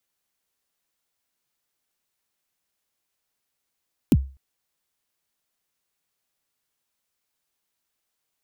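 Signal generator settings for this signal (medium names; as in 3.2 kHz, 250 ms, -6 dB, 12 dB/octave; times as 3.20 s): kick drum length 0.25 s, from 330 Hz, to 67 Hz, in 44 ms, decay 0.34 s, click on, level -9 dB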